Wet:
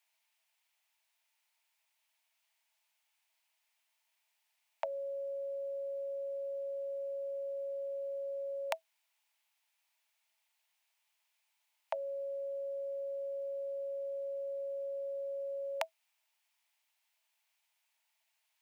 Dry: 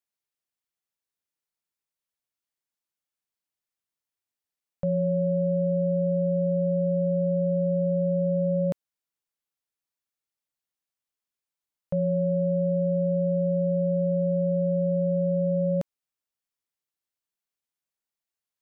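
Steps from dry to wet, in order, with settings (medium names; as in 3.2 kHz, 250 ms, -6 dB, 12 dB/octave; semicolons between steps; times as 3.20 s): rippled Chebyshev high-pass 630 Hz, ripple 9 dB; trim +17.5 dB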